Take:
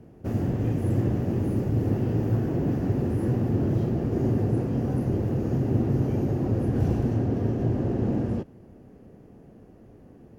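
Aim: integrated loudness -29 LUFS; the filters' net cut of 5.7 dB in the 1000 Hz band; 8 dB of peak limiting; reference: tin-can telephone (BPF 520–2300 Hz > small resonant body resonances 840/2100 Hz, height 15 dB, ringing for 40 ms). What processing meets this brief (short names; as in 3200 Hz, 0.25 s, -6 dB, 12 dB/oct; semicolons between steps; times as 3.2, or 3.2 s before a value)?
bell 1000 Hz -7.5 dB; limiter -19.5 dBFS; BPF 520–2300 Hz; small resonant body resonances 840/2100 Hz, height 15 dB, ringing for 40 ms; gain +10.5 dB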